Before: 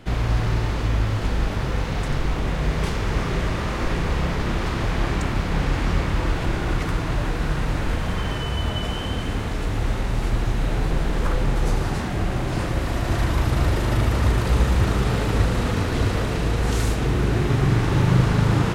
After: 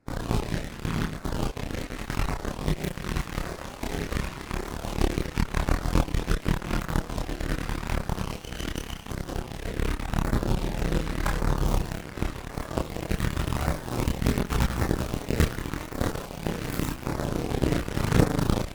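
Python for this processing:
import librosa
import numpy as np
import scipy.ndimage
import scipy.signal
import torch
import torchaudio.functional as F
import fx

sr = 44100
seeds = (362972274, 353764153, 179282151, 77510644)

p1 = fx.tracing_dist(x, sr, depth_ms=0.39)
p2 = fx.rider(p1, sr, range_db=4, speed_s=0.5)
p3 = p1 + F.gain(torch.from_numpy(p2), 2.0).numpy()
p4 = fx.filter_lfo_notch(p3, sr, shape='saw_down', hz=0.88, low_hz=350.0, high_hz=3300.0, q=1.4)
p5 = fx.cheby_harmonics(p4, sr, harmonics=(2, 3), levels_db=(-18, -9), full_scale_db=-1.5)
y = fx.chorus_voices(p5, sr, voices=4, hz=0.13, base_ms=28, depth_ms=3.7, mix_pct=45)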